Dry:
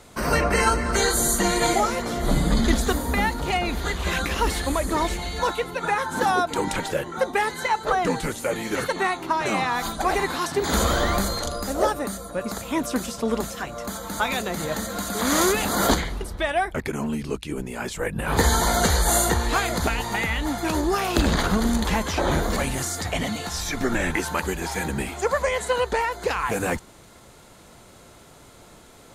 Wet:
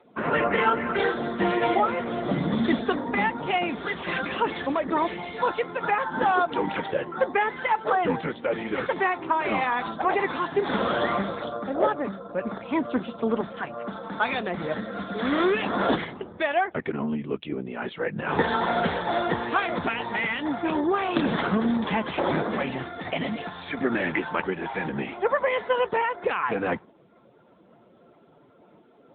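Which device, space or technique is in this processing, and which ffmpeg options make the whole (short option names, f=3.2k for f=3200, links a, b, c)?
mobile call with aggressive noise cancelling: -filter_complex "[0:a]asplit=3[a][b][c];[a]afade=t=out:st=14.73:d=0.02[d];[b]equalizer=f=910:t=o:w=0.41:g=-6,afade=t=in:st=14.73:d=0.02,afade=t=out:st=15.61:d=0.02[e];[c]afade=t=in:st=15.61:d=0.02[f];[d][e][f]amix=inputs=3:normalize=0,highpass=160,afftdn=nr=13:nf=-45" -ar 8000 -c:a libopencore_amrnb -b:a 10200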